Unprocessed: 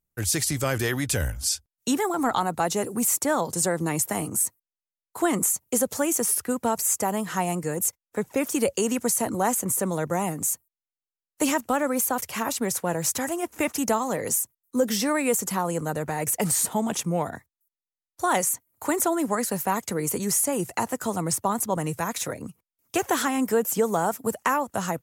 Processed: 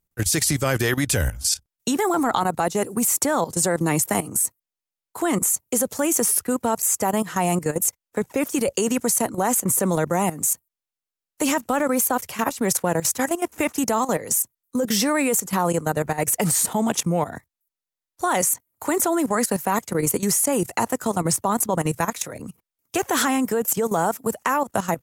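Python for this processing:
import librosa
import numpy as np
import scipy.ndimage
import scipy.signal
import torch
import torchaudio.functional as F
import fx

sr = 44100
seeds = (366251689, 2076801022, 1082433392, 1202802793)

y = fx.level_steps(x, sr, step_db=14)
y = y * 10.0 ** (7.5 / 20.0)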